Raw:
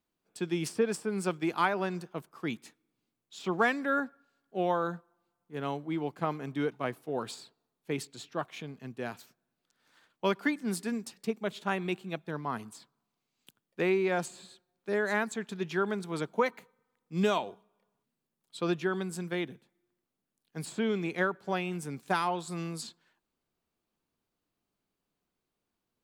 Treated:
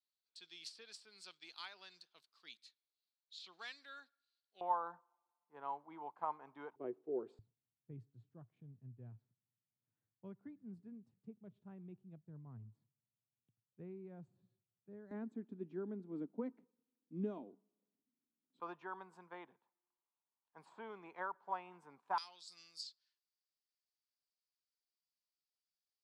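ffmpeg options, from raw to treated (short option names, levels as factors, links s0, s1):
-af "asetnsamples=n=441:p=0,asendcmd='4.61 bandpass f 930;6.76 bandpass f 380;7.39 bandpass f 110;15.11 bandpass f 270;18.6 bandpass f 960;22.18 bandpass f 4900',bandpass=f=4200:t=q:w=5.5:csg=0"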